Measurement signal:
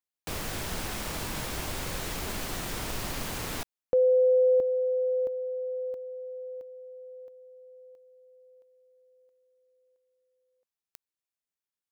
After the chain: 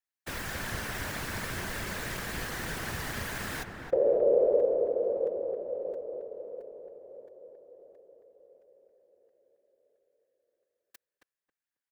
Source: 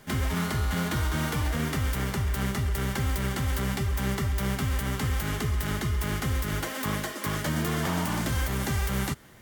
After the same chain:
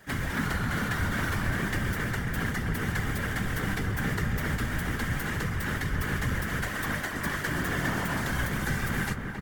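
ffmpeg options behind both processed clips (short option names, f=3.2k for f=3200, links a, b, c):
-filter_complex "[0:a]equalizer=f=1.7k:t=o:w=0.55:g=10.5,afftfilt=real='hypot(re,im)*cos(2*PI*random(0))':imag='hypot(re,im)*sin(2*PI*random(1))':win_size=512:overlap=0.75,asplit=2[a][b];[b]adelay=271,lowpass=f=1.3k:p=1,volume=-3dB,asplit=2[c][d];[d]adelay=271,lowpass=f=1.3k:p=1,volume=0.24,asplit=2[e][f];[f]adelay=271,lowpass=f=1.3k:p=1,volume=0.24[g];[c][e][g]amix=inputs=3:normalize=0[h];[a][h]amix=inputs=2:normalize=0,volume=2dB"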